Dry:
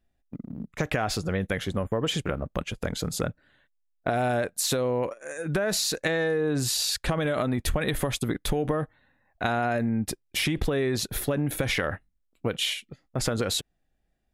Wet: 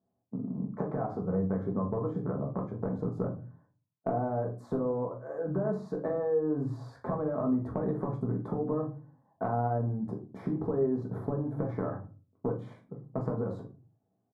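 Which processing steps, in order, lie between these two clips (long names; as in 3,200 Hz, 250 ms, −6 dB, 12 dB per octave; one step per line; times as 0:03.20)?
elliptic band-pass filter 110–1,100 Hz, stop band 40 dB
downward compressor 4 to 1, threshold −32 dBFS, peak gain reduction 9 dB
double-tracking delay 42 ms −12 dB
rectangular room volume 200 cubic metres, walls furnished, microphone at 1.5 metres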